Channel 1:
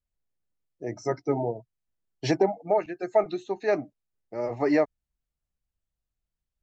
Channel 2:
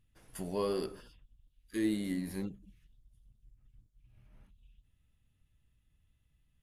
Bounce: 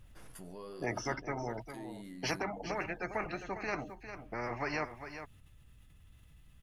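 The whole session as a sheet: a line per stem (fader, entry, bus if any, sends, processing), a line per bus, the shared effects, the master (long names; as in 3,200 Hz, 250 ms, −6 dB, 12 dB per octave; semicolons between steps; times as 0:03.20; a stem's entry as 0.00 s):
+2.5 dB, 0.00 s, no send, echo send −22 dB, moving average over 12 samples; every bin compressed towards the loudest bin 4 to 1; automatic ducking −12 dB, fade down 1.25 s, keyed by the second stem
−17.5 dB, 0.00 s, no send, no echo send, parametric band 1,200 Hz +3.5 dB; envelope flattener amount 70%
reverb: not used
echo: single-tap delay 403 ms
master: no processing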